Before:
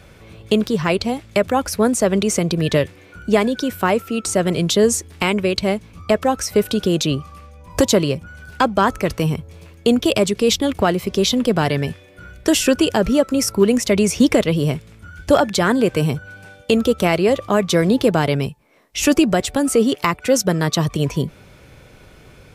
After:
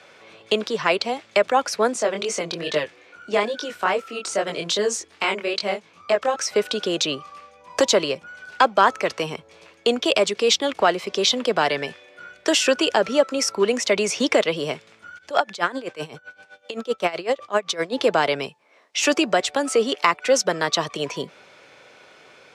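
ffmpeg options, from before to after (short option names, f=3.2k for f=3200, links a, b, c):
-filter_complex "[0:a]asettb=1/sr,asplit=3[a][b][c];[a]atrim=end=1.934[d];[b]atrim=start=1.93:end=6.36,asetpts=PTS-STARTPTS,afade=t=in:d=0.004:c=qsin,afade=t=out:st=4.426:d=0.004:c=qsin,flanger=delay=19.5:depth=5.1:speed=2.4[e];[c]atrim=start=6.356[f];[d][e]acrossfade=d=0.004:c1=hsin:c2=qsin[g];[g][f]acrossfade=d=0.004:c1=qsin:c2=hsin,asplit=3[h][i][j];[h]afade=t=out:st=15.17:d=0.02[k];[i]aeval=exprs='val(0)*pow(10,-19*(0.5-0.5*cos(2*PI*7.8*n/s))/20)':c=same,afade=t=in:st=15.17:d=0.02,afade=t=out:st=17.92:d=0.02[l];[j]afade=t=in:st=17.92:d=0.02[m];[k][l][m]amix=inputs=3:normalize=0,highpass=210,acrossover=split=450 7600:gain=0.224 1 0.0708[n][o][p];[n][o][p]amix=inputs=3:normalize=0,volume=1.5dB"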